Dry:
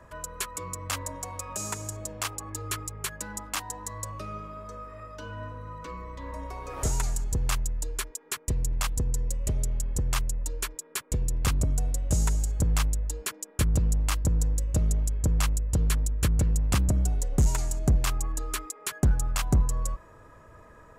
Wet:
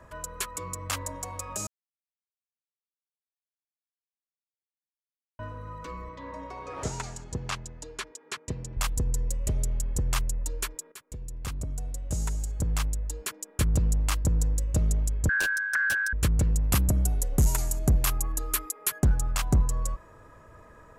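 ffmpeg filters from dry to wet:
-filter_complex "[0:a]asettb=1/sr,asplit=3[s0][s1][s2];[s0]atrim=end=6.094[s3];[s1]atrim=start=6.09:end=8.77,asetpts=PTS-STARTPTS,afade=t=in:d=0.004:c=qsin,afade=t=out:st=2.676:d=0.004:c=qsin,highpass=110,lowpass=5500[s4];[s2]atrim=start=8.766[s5];[s3][s4]acrossfade=d=0.004:c1=hsin:c2=qsin[s6];[s6][s5]acrossfade=d=0.004:c1=qsin:c2=hsin,asettb=1/sr,asplit=3[s7][s8][s9];[s7]atrim=end=15.294[s10];[s8]atrim=start=15.29:end=16.13,asetpts=PTS-STARTPTS,afade=t=in:d=0.004:c=qsin,afade=t=out:st=0.836:d=0.004:c=qsin,aeval=exprs='val(0)*sin(2*PI*1600*n/s)':c=same[s11];[s9]atrim=start=16.126[s12];[s10][s11]acrossfade=d=0.004:c1=hsin:c2=qsin[s13];[s13][s12]acrossfade=d=0.004:c1=qsin:c2=hsin,asettb=1/sr,asplit=3[s14][s15][s16];[s14]atrim=end=16.634[s17];[s15]atrim=start=16.63:end=18.99,asetpts=PTS-STARTPTS,afade=t=in:d=0.004:c=qsin,afade=t=out:st=2.356:d=0.004:c=qsin,equalizer=f=12000:t=o:w=0.43:g=14[s18];[s16]atrim=start=18.986[s19];[s17][s18]acrossfade=d=0.004:c1=hsin:c2=qsin[s20];[s20][s19]acrossfade=d=0.004:c1=qsin:c2=hsin,asplit=4[s21][s22][s23][s24];[s21]atrim=end=1.67,asetpts=PTS-STARTPTS,afade=t=out:st=1.666:d=0.004:c=hsin[s25];[s22]atrim=start=1.67:end=5.39,asetpts=PTS-STARTPTS,volume=0[s26];[s23]atrim=start=5.39:end=10.92,asetpts=PTS-STARTPTS,afade=t=in:d=0.004:c=hsin,afade=t=out:st=5.526:d=0.004:c=hsin:silence=0.188365[s27];[s24]atrim=start=10.92,asetpts=PTS-STARTPTS,afade=t=in:d=2.88:silence=0.188365[s28];[s25][s26][s27][s28]concat=n=4:v=0:a=1"

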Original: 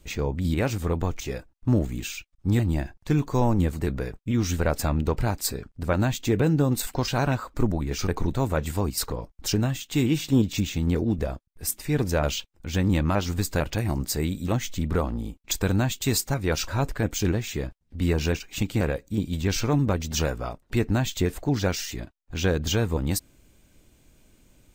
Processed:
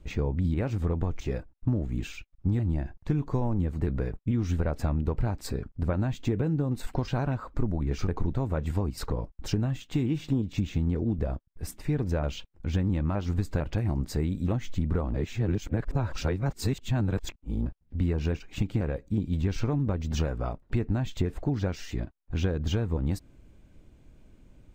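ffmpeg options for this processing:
-filter_complex "[0:a]asplit=3[s0][s1][s2];[s0]atrim=end=15.142[s3];[s1]atrim=start=15.138:end=17.662,asetpts=PTS-STARTPTS,areverse[s4];[s2]atrim=start=17.658[s5];[s3][s4]acrossfade=d=0.004:c1=hsin:c2=hsin[s6];[s6][s5]acrossfade=d=0.004:c1=hsin:c2=hsin,lowpass=f=1500:p=1,acompressor=threshold=0.0501:ratio=6,lowshelf=f=210:g=5"

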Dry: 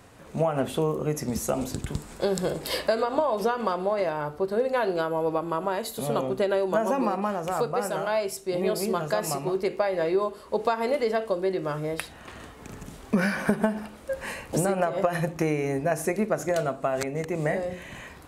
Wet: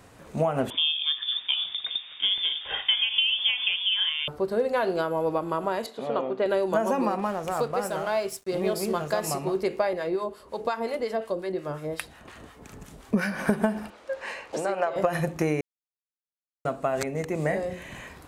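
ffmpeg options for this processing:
-filter_complex "[0:a]asettb=1/sr,asplit=3[s0][s1][s2];[s0]atrim=end=0.704[s3];[s1]atrim=start=0.7:end=4.28,asetpts=PTS-STARTPTS,afade=t=in:d=0.004:c=qsin,afade=t=out:st=3.576:d=0.004:c=qsin,lowpass=f=3100:t=q:w=0.5098,lowpass=f=3100:t=q:w=0.6013,lowpass=f=3100:t=q:w=0.9,lowpass=f=3100:t=q:w=2.563,afreqshift=-3700[s4];[s2]atrim=start=4.276[s5];[s3][s4]acrossfade=d=0.004:c1=hsin:c2=qsin[s6];[s6][s5]acrossfade=d=0.004:c1=qsin:c2=hsin,asettb=1/sr,asplit=3[s7][s8][s9];[s7]atrim=end=5.864[s10];[s8]atrim=start=5.86:end=6.46,asetpts=PTS-STARTPTS,afade=t=in:d=0.004:c=qsin,afade=t=out:st=0.596:d=0.004:c=qsin,highpass=280,lowpass=2900[s11];[s9]atrim=start=6.456[s12];[s10][s11]acrossfade=d=0.004:c1=hsin:c2=qsin[s13];[s13][s12]acrossfade=d=0.004:c1=qsin:c2=hsin,asettb=1/sr,asplit=3[s14][s15][s16];[s14]atrim=end=7.194[s17];[s15]atrim=start=7.19:end=9.24,asetpts=PTS-STARTPTS,afade=t=in:d=0.004:c=qsin,afade=t=out:st=2.046:d=0.004:c=qsin,aeval=exprs='sgn(val(0))*max(abs(val(0))-0.00473,0)':c=same[s18];[s16]atrim=start=9.236[s19];[s17][s18]acrossfade=d=0.004:c1=hsin:c2=qsin[s20];[s20][s19]acrossfade=d=0.004:c1=qsin:c2=hsin,asettb=1/sr,asplit=3[s21][s22][s23];[s21]atrim=end=9.934[s24];[s22]atrim=start=9.93:end=13.39,asetpts=PTS-STARTPTS,afade=t=in:d=0.004:c=qsin,afade=t=out:st=3.456:d=0.004:c=qsin,acrossover=split=850[s25][s26];[s25]aeval=exprs='val(0)*(1-0.7/2+0.7/2*cos(2*PI*5.6*n/s))':c=same[s27];[s26]aeval=exprs='val(0)*(1-0.7/2-0.7/2*cos(2*PI*5.6*n/s))':c=same[s28];[s27][s28]amix=inputs=2:normalize=0[s29];[s23]atrim=start=13.386[s30];[s24][s29]acrossfade=d=0.004:c1=hsin:c2=qsin[s31];[s31][s30]acrossfade=d=0.004:c1=qsin:c2=hsin,asettb=1/sr,asplit=3[s32][s33][s34];[s32]atrim=end=13.904[s35];[s33]atrim=start=13.9:end=14.96,asetpts=PTS-STARTPTS,afade=t=in:d=0.004:c=qsin,afade=t=out:st=1.056:d=0.004:c=qsin,acrossover=split=360 6500:gain=0.126 1 0.112[s36][s37][s38];[s36][s37][s38]amix=inputs=3:normalize=0[s39];[s34]atrim=start=14.956[s40];[s35][s39]acrossfade=d=0.004:c1=hsin:c2=qsin[s41];[s41][s40]acrossfade=d=0.004:c1=qsin:c2=hsin,asplit=3[s42][s43][s44];[s42]atrim=end=15.61,asetpts=PTS-STARTPTS,afade=t=out:st=15.606:d=0.004:c=hsin[s45];[s43]atrim=start=15.61:end=16.65,asetpts=PTS-STARTPTS,volume=0[s46];[s44]atrim=start=16.65,asetpts=PTS-STARTPTS,afade=t=in:d=0.004:c=hsin[s47];[s45][s46][s47]concat=n=3:v=0:a=1"

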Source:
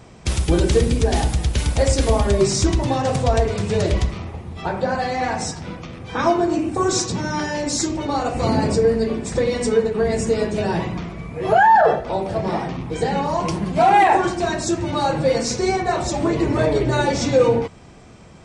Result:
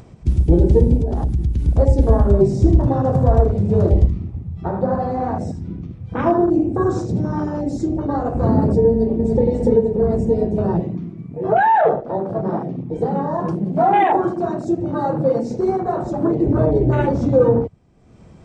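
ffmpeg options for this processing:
-filter_complex "[0:a]asettb=1/sr,asplit=3[s0][s1][s2];[s0]atrim=end=0.964[s3];[s1]atrim=start=0.96:end=1.68,asetpts=PTS-STARTPTS,afade=t=in:d=0.004:c=qsin,afade=t=out:st=0.716:d=0.004:c=qsin,acompressor=threshold=0.112:ratio=6:attack=3.2:release=140:knee=1:detection=peak[s4];[s2]atrim=start=1.676[s5];[s3][s4]acrossfade=d=0.004:c1=hsin:c2=qsin[s6];[s6][s5]acrossfade=d=0.004:c1=qsin:c2=hsin,asplit=3[s7][s8][s9];[s7]afade=t=out:st=2.6:d=0.02[s10];[s8]aecho=1:1:77:0.376,afade=t=in:st=2.6:d=0.02,afade=t=out:st=7.63:d=0.02[s11];[s9]afade=t=in:st=7.63:d=0.02[s12];[s10][s11][s12]amix=inputs=3:normalize=0,asplit=2[s13][s14];[s14]afade=t=in:st=8.9:d=0.01,afade=t=out:st=9.47:d=0.01,aecho=0:1:290|580|870|1160:0.749894|0.187474|0.0468684|0.0117171[s15];[s13][s15]amix=inputs=2:normalize=0,asettb=1/sr,asplit=3[s16][s17][s18];[s16]atrim=end=10.804[s19];[s17]atrim=start=10.8:end=16.47,asetpts=PTS-STARTPTS,afade=t=in:d=0.004:c=qsin,afade=t=out:st=5.666:d=0.004:c=qsin,equalizer=f=69:t=o:w=1.1:g=-14.5[s20];[s18]atrim=start=16.466[s21];[s19][s20]acrossfade=d=0.004:c1=hsin:c2=qsin[s22];[s22][s21]acrossfade=d=0.004:c1=qsin:c2=hsin,afwtdn=0.0708,tiltshelf=f=630:g=5.5,acompressor=mode=upward:threshold=0.0282:ratio=2.5"

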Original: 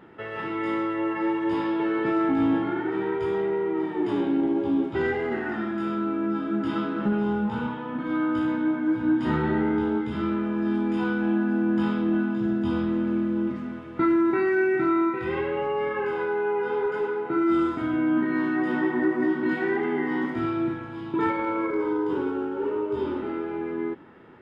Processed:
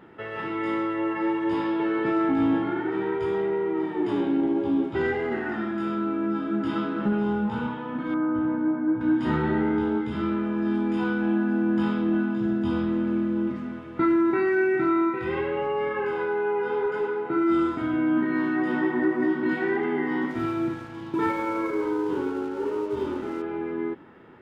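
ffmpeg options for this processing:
-filter_complex "[0:a]asettb=1/sr,asplit=3[s0][s1][s2];[s0]atrim=end=8.144[s3];[s1]atrim=start=8.14:end=9.01,asetpts=PTS-STARTPTS,afade=t=in:d=0.004:c=qsin,afade=t=out:st=0.866:d=0.004:c=qsin,lowpass=1300[s4];[s2]atrim=start=9.006[s5];[s3][s4]acrossfade=d=0.004:c1=hsin:c2=qsin[s6];[s6][s5]acrossfade=d=0.004:c1=qsin:c2=hsin,asettb=1/sr,asplit=3[s7][s8][s9];[s7]atrim=end=20.304[s10];[s8]atrim=start=20.3:end=23.42,asetpts=PTS-STARTPTS,afade=t=in:d=0.004:c=qsin,afade=t=out:st=3.116:d=0.004:c=qsin,aeval=exprs='sgn(val(0))*max(abs(val(0))-0.00447,0)':c=same[s11];[s9]atrim=start=23.416[s12];[s10][s11]acrossfade=d=0.004:c1=hsin:c2=qsin[s13];[s13][s12]acrossfade=d=0.004:c1=qsin:c2=hsin"

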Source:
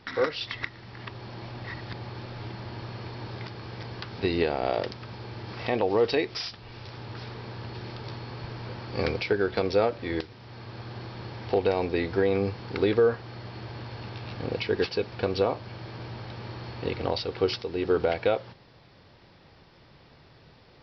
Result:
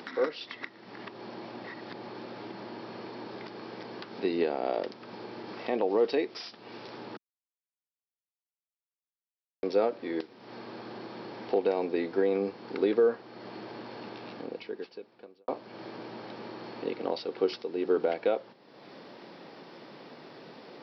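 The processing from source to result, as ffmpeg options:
-filter_complex "[0:a]asplit=4[s0][s1][s2][s3];[s0]atrim=end=7.17,asetpts=PTS-STARTPTS,afade=t=out:st=7.166:d=0.004:c=hsin[s4];[s1]atrim=start=7.17:end=9.63,asetpts=PTS-STARTPTS,volume=0[s5];[s2]atrim=start=9.63:end=15.48,asetpts=PTS-STARTPTS,afade=t=in:d=0.004:c=hsin,afade=t=out:st=4.54:d=1.31:c=qua[s6];[s3]atrim=start=15.48,asetpts=PTS-STARTPTS,afade=t=in:d=0.004:c=hsin[s7];[s4][s5][s6][s7]concat=n=4:v=0:a=1,highpass=f=220:w=0.5412,highpass=f=220:w=1.3066,acompressor=mode=upward:threshold=0.0251:ratio=2.5,tiltshelf=f=930:g=4,volume=0.596"

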